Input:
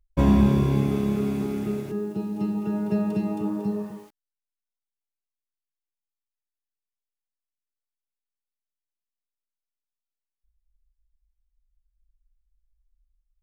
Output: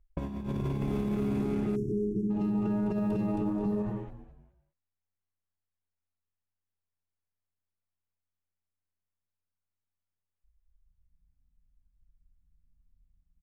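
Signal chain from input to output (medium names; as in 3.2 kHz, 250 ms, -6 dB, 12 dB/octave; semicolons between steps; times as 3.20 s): local Wiener filter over 9 samples; level-controlled noise filter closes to 2.7 kHz, open at -21.5 dBFS; frequency-shifting echo 209 ms, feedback 36%, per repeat -89 Hz, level -14 dB; compressor with a negative ratio -24 dBFS, ratio -0.5; peak limiter -23 dBFS, peak gain reduction 10.5 dB; spectral selection erased 1.76–2.30 s, 440–5200 Hz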